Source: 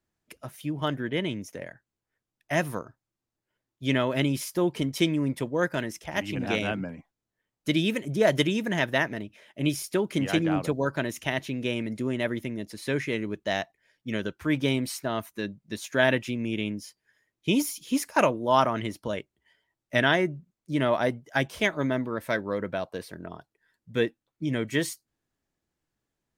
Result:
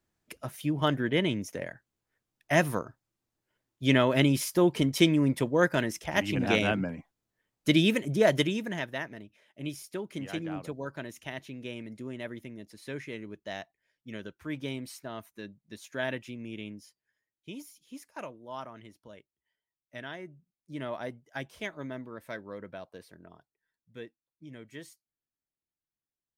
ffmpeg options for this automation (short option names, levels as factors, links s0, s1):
-af "volume=2.82,afade=t=out:st=7.85:d=1.05:silence=0.237137,afade=t=out:st=16.75:d=0.79:silence=0.375837,afade=t=in:st=20.18:d=0.6:silence=0.446684,afade=t=out:st=23.09:d=0.93:silence=0.473151"